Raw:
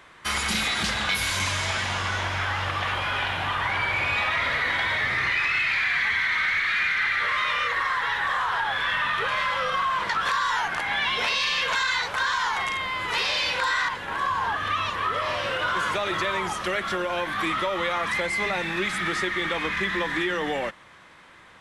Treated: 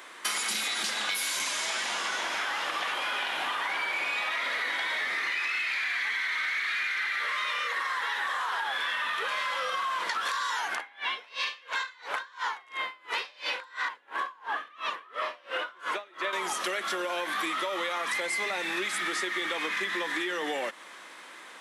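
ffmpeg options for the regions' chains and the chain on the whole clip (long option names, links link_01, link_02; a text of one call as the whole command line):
ffmpeg -i in.wav -filter_complex "[0:a]asettb=1/sr,asplit=3[link_01][link_02][link_03];[link_01]atrim=end=10.764[link_04];[link_02]atrim=start=10.76:end=16.33,asetpts=PTS-STARTPTS,afade=type=in:duration=0.004:curve=qsin,afade=type=out:start_time=5.566:duration=0.004:curve=qsin,highpass=150,bass=frequency=250:gain=-4,treble=frequency=4000:gain=-12,aeval=exprs='val(0)*pow(10,-32*(0.5-0.5*cos(2*PI*2.9*n/s))/20)':channel_layout=same[link_05];[link_03]atrim=start=16.326[link_06];[link_04][link_05]acrossfade=duration=0.004:curve1=hsin:curve2=qsin[link_07];[link_07][link_06]acrossfade=duration=0.004:curve1=qsin:curve2=hsin,highpass=frequency=260:width=0.5412,highpass=frequency=260:width=1.3066,highshelf=frequency=5300:gain=11,acompressor=threshold=-31dB:ratio=6,volume=2.5dB" out.wav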